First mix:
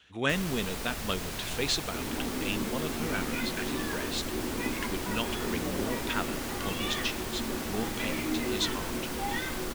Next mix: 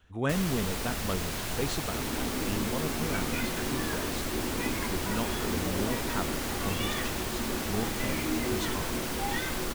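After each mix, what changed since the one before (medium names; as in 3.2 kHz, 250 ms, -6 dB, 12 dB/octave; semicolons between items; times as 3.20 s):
speech: remove frequency weighting D; first sound +3.0 dB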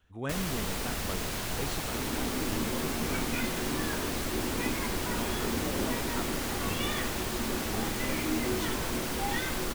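speech -6.0 dB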